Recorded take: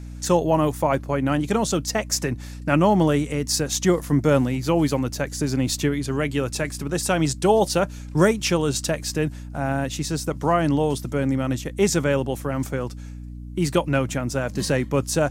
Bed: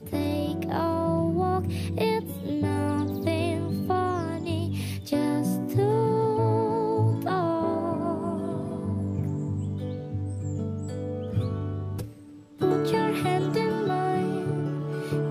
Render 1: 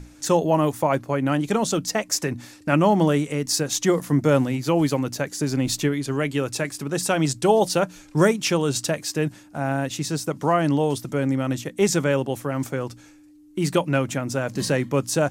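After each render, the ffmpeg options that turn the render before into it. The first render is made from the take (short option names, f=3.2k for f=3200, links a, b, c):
-af "bandreject=f=60:t=h:w=6,bandreject=f=120:t=h:w=6,bandreject=f=180:t=h:w=6,bandreject=f=240:t=h:w=6"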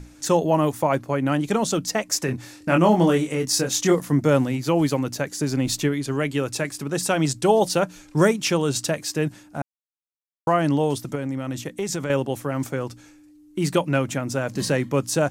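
-filter_complex "[0:a]asettb=1/sr,asplit=3[a][b][c];[a]atrim=end=2.264[d];[b]atrim=start=2.26:end=3.95,asetpts=PTS-STARTPTS,afade=t=in:d=0.004:c=qsin,afade=t=out:st=1.686:d=0.004:c=qsin,asplit=2[e][f];[f]adelay=23,volume=-4.5dB[g];[e][g]amix=inputs=2:normalize=0,atrim=end_sample=74529[h];[c]atrim=start=3.946[i];[d][h]acrossfade=d=0.004:c1=hsin:c2=qsin[j];[j][i]acrossfade=d=0.004:c1=qsin:c2=hsin,asettb=1/sr,asplit=3[k][l][m];[k]atrim=end=11.154[n];[l]atrim=start=11.15:end=12.1,asetpts=PTS-STARTPTS,afade=t=in:d=0.004:c=qsin,afade=t=out:st=0.946:d=0.004:c=qsin,acompressor=threshold=-23dB:ratio=6:attack=3.2:release=140:knee=1:detection=peak[o];[m]atrim=start=12.096[p];[n][o]acrossfade=d=0.004:c1=hsin:c2=qsin[q];[q][p]acrossfade=d=0.004:c1=qsin:c2=hsin,asplit=3[r][s][t];[r]atrim=end=9.62,asetpts=PTS-STARTPTS,afade=t=out:st=9.616:d=0.004:c=hsin[u];[s]atrim=start=9.62:end=10.47,asetpts=PTS-STARTPTS,volume=0[v];[t]atrim=start=10.47,asetpts=PTS-STARTPTS,afade=t=in:d=0.004:c=hsin[w];[u][v][w]concat=n=3:v=0:a=1"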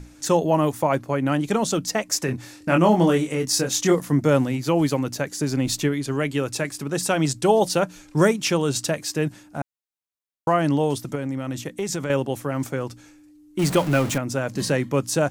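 -filter_complex "[0:a]asettb=1/sr,asplit=3[a][b][c];[a]atrim=end=13.594[d];[b]atrim=start=13.59:end=14.18,asetpts=PTS-STARTPTS,afade=t=in:d=0.004:c=qsin,afade=t=out:st=0.586:d=0.004:c=qsin,aeval=exprs='val(0)+0.5*0.0531*sgn(val(0))':c=same[e];[c]atrim=start=14.176[f];[d][e]acrossfade=d=0.004:c1=hsin:c2=qsin[g];[g][f]acrossfade=d=0.004:c1=qsin:c2=hsin"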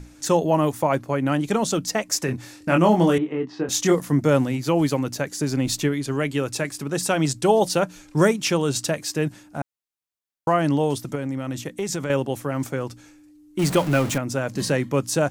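-filter_complex "[0:a]asettb=1/sr,asplit=3[a][b][c];[a]atrim=end=3.184[d];[b]atrim=start=3.18:end=3.69,asetpts=PTS-STARTPTS,afade=t=in:d=0.004:c=qsin,afade=t=out:st=0.506:d=0.004:c=qsin,highpass=200,equalizer=f=350:t=q:w=4:g=5,equalizer=f=550:t=q:w=4:g=-8,equalizer=f=1.5k:t=q:w=4:g=-6,equalizer=f=2.3k:t=q:w=4:g=-9,lowpass=f=2.6k:w=0.5412,lowpass=f=2.6k:w=1.3066[e];[c]atrim=start=3.686[f];[d][e]acrossfade=d=0.004:c1=hsin:c2=qsin[g];[g][f]acrossfade=d=0.004:c1=qsin:c2=hsin"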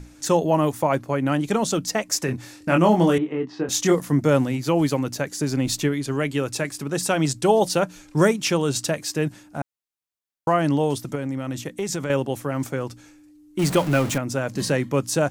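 -af anull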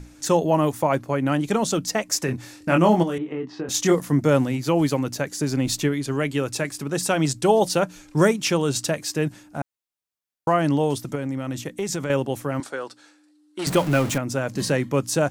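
-filter_complex "[0:a]asplit=3[a][b][c];[a]afade=t=out:st=3.02:d=0.02[d];[b]acompressor=threshold=-25dB:ratio=3:attack=3.2:release=140:knee=1:detection=peak,afade=t=in:st=3.02:d=0.02,afade=t=out:st=3.73:d=0.02[e];[c]afade=t=in:st=3.73:d=0.02[f];[d][e][f]amix=inputs=3:normalize=0,asettb=1/sr,asplit=3[g][h][i];[g]atrim=end=12.604[j];[h]atrim=start=12.6:end=13.67,asetpts=PTS-STARTPTS,afade=t=in:d=0.004:c=qsin,afade=t=out:st=1.066:d=0.004:c=qsin,highpass=450,equalizer=f=1.5k:t=q:w=4:g=4,equalizer=f=2.3k:t=q:w=4:g=-5,equalizer=f=4.1k:t=q:w=4:g=6,equalizer=f=6.5k:t=q:w=4:g=-6,lowpass=f=9.8k:w=0.5412,lowpass=f=9.8k:w=1.3066[k];[i]atrim=start=13.666[l];[j][k]acrossfade=d=0.004:c1=hsin:c2=qsin[m];[m][l]acrossfade=d=0.004:c1=qsin:c2=hsin"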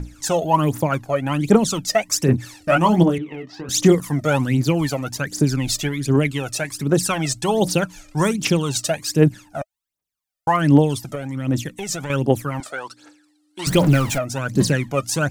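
-af "aphaser=in_gain=1:out_gain=1:delay=1.7:decay=0.73:speed=1.3:type=triangular"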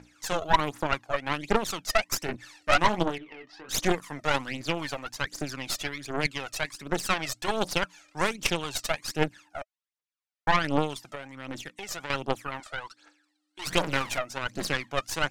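-af "bandpass=f=2k:t=q:w=0.51:csg=0,aeval=exprs='0.447*(cos(1*acos(clip(val(0)/0.447,-1,1)))-cos(1*PI/2))+0.0708*(cos(3*acos(clip(val(0)/0.447,-1,1)))-cos(3*PI/2))+0.0794*(cos(6*acos(clip(val(0)/0.447,-1,1)))-cos(6*PI/2))+0.0126*(cos(8*acos(clip(val(0)/0.447,-1,1)))-cos(8*PI/2))':c=same"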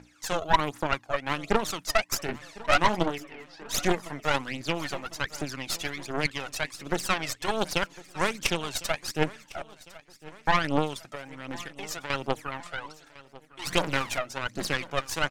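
-af "aecho=1:1:1054|2108|3162|4216:0.1|0.054|0.0292|0.0157"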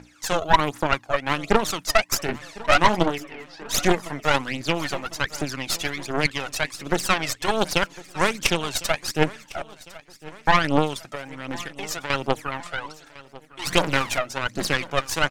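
-af "volume=5.5dB,alimiter=limit=-2dB:level=0:latency=1"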